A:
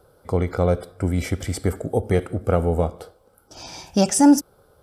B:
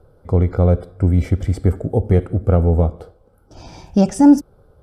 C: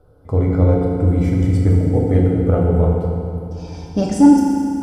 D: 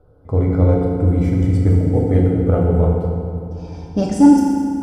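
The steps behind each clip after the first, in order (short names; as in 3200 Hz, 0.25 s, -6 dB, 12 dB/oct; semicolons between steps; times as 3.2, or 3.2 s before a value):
tilt -3 dB/oct; gain -1.5 dB
FDN reverb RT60 2.5 s, low-frequency decay 1.4×, high-frequency decay 0.85×, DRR -2.5 dB; gain -3.5 dB
mismatched tape noise reduction decoder only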